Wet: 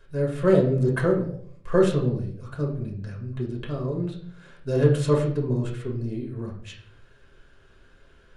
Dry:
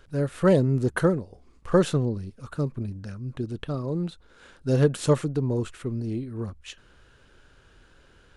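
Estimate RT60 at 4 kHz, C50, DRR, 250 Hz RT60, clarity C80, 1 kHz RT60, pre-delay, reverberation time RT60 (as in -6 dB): 0.45 s, 7.5 dB, -2.5 dB, 0.65 s, 11.0 dB, 0.50 s, 5 ms, 0.60 s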